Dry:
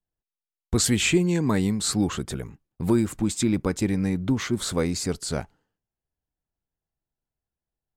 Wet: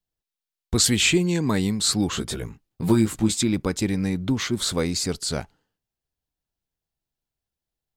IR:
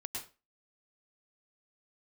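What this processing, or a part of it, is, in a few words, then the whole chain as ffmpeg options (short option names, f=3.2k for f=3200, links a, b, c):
presence and air boost: -filter_complex "[0:a]asettb=1/sr,asplit=3[a][b][c];[a]atrim=end=2.114[d];[b]atrim=start=2.11:end=3.38,asetpts=PTS-STARTPTS,afade=t=in:d=0.004:c=qsin,afade=t=out:st=1.266:d=0.004:c=qsin,asplit=2[e][f];[f]adelay=18,volume=-3dB[g];[e][g]amix=inputs=2:normalize=0,atrim=end_sample=56007[h];[c]atrim=start=3.376[i];[d][h]acrossfade=d=0.004:c1=hsin:c2=qsin[j];[j][i]acrossfade=d=0.004:c1=qsin:c2=hsin,equalizer=f=4k:t=o:w=1.3:g=6,highshelf=f=11k:g=5"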